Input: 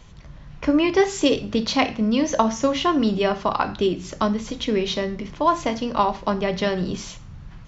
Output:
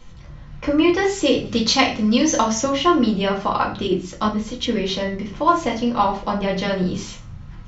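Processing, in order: 1.45–2.62 s: treble shelf 3.8 kHz +11.5 dB; reverberation RT60 0.30 s, pre-delay 4 ms, DRR -1.5 dB; 3.87–4.66 s: three bands expanded up and down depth 70%; trim -2 dB

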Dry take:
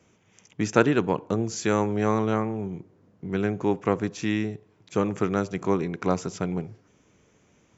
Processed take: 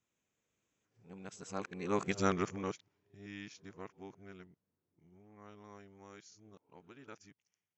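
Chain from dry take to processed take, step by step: reverse the whole clip; Doppler pass-by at 2.17 s, 19 m/s, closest 2.9 m; tilt shelf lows -4.5 dB, about 1.2 kHz; trim -1 dB

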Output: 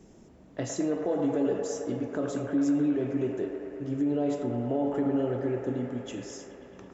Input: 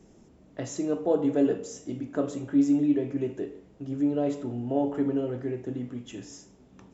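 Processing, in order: peak limiter -21.5 dBFS, peak gain reduction 8.5 dB; feedback echo behind a band-pass 108 ms, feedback 84%, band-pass 1 kHz, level -4.5 dB; trim +1.5 dB

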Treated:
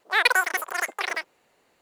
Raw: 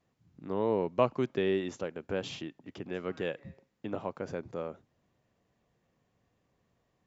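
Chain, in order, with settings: wide varispeed 3.9×; trim +9 dB

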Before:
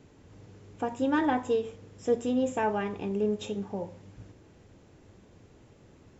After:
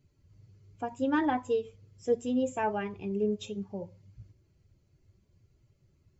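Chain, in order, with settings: expander on every frequency bin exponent 1.5

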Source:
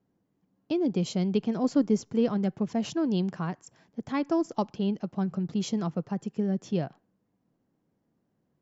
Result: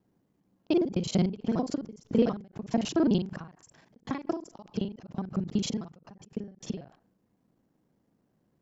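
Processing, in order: time reversed locally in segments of 37 ms; endings held to a fixed fall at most 140 dB/s; trim +3.5 dB

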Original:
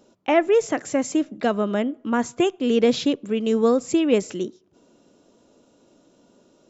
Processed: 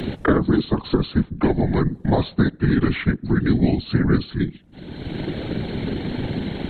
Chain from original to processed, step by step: rotating-head pitch shifter -10 st; whisper effect; three bands compressed up and down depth 100%; trim +3 dB

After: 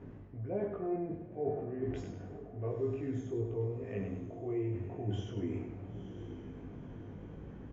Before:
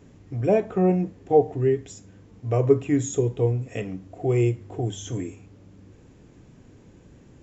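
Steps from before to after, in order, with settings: low-pass 1.7 kHz 12 dB/octave; reverse; compression 4:1, threshold -38 dBFS, peak gain reduction 21.5 dB; reverse; transient shaper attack -2 dB, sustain +4 dB; doubling 19 ms -2 dB; on a send: echo that smears into a reverb 925 ms, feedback 41%, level -12 dB; on the sum: speed mistake 25 fps video run at 24 fps; modulated delay 100 ms, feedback 41%, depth 56 cents, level -7 dB

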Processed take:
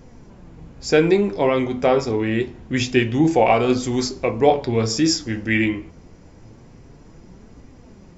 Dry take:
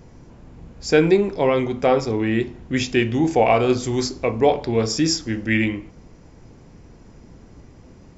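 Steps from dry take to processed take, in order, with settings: flange 0.26 Hz, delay 3.6 ms, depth 9.1 ms, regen +59%; trim +5 dB

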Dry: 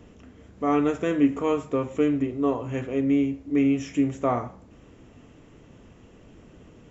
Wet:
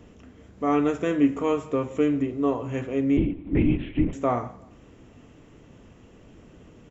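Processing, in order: feedback delay 175 ms, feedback 34%, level -23 dB; 3.17–4.13 s: LPC vocoder at 8 kHz whisper

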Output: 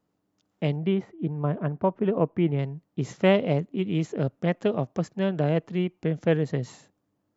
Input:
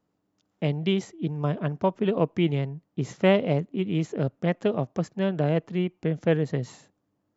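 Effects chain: 0.76–2.59 s: low-pass 1.8 kHz 12 dB/octave

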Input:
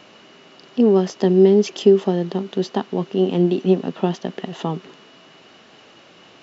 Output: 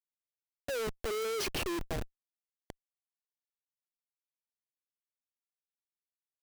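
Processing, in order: Doppler pass-by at 1.40 s, 50 m/s, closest 3.5 m; level-controlled noise filter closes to 470 Hz, open at -20.5 dBFS; Chebyshev high-pass 380 Hz, order 5; Schmitt trigger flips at -42 dBFS

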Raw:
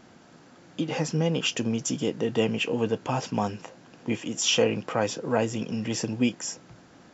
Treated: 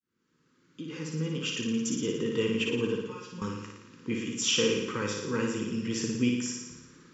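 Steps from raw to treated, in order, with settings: fade-in on the opening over 2.08 s; Chebyshev band-stop 440–1100 Hz, order 2; 3.01–3.42 s: feedback comb 180 Hz, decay 0.17 s, harmonics all, mix 100%; flutter echo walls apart 9.8 m, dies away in 0.94 s; trim -3.5 dB

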